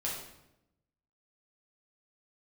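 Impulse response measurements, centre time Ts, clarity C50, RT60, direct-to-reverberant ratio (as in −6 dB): 50 ms, 2.5 dB, 0.85 s, −5.0 dB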